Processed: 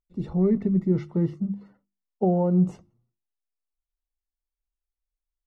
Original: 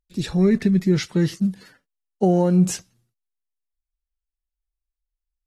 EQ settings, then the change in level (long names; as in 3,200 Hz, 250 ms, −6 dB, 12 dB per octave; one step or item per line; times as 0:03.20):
Savitzky-Golay smoothing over 65 samples
mains-hum notches 50/100/150/200/250/300/350 Hz
−3.5 dB